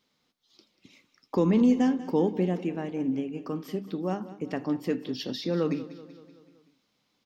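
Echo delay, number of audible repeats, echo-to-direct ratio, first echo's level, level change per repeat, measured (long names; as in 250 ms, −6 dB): 190 ms, 4, −14.5 dB, −16.0 dB, −5.0 dB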